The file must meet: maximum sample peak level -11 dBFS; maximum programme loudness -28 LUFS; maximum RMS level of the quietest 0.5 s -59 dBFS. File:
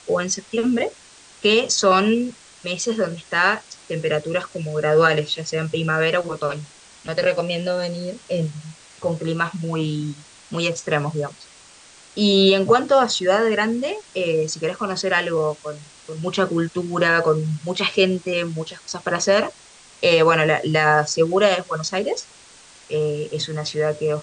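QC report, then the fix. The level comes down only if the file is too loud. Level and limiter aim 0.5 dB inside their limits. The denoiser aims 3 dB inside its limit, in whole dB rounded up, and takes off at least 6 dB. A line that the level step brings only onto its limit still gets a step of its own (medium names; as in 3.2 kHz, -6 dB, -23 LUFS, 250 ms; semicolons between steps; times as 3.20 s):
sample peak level -4.5 dBFS: fail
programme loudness -21.0 LUFS: fail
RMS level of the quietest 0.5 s -47 dBFS: fail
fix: noise reduction 8 dB, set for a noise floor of -47 dBFS; trim -7.5 dB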